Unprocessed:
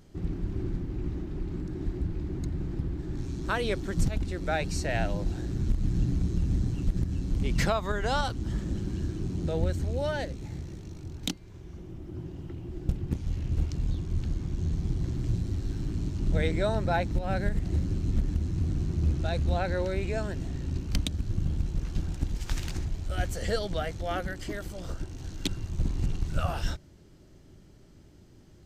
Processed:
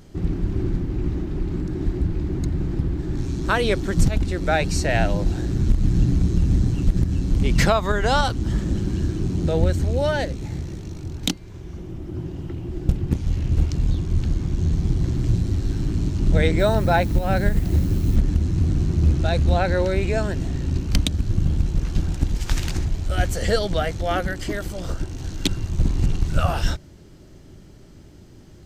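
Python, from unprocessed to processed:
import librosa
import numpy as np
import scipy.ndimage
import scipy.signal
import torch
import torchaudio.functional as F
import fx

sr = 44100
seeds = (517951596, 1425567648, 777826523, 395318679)

y = fx.dmg_noise_colour(x, sr, seeds[0], colour='blue', level_db=-57.0, at=(16.58, 18.15), fade=0.02)
y = F.gain(torch.from_numpy(y), 8.5).numpy()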